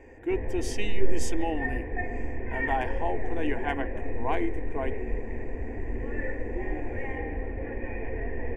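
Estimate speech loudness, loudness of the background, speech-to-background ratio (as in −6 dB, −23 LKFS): −33.5 LKFS, −35.0 LKFS, 1.5 dB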